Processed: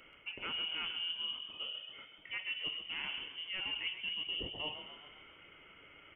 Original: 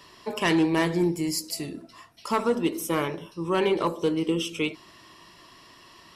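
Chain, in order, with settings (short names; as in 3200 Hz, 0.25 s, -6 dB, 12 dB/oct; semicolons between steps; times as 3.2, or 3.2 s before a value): inverted band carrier 3200 Hz; reverse; compressor 4:1, threshold -33 dBFS, peak gain reduction 12 dB; reverse; frequency-shifting echo 0.131 s, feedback 57%, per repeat +42 Hz, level -9 dB; gain -6 dB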